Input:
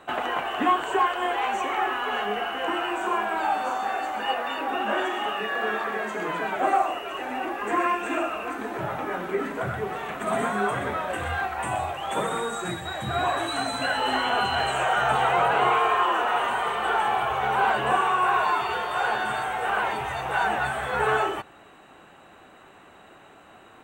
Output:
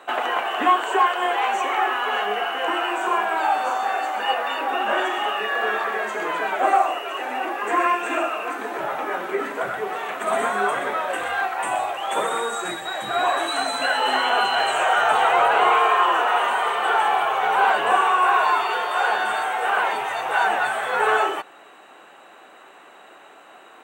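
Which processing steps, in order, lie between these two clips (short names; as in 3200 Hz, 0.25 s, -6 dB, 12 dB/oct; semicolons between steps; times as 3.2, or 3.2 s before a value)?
HPF 390 Hz 12 dB/oct; gain +4.5 dB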